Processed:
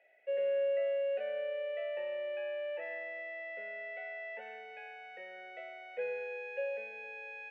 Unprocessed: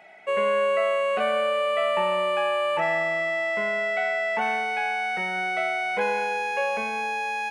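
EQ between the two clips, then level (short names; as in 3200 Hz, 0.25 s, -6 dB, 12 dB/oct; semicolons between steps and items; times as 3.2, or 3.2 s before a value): vowel filter e; HPF 220 Hz 24 dB/oct; high shelf 8400 Hz -3.5 dB; -5.5 dB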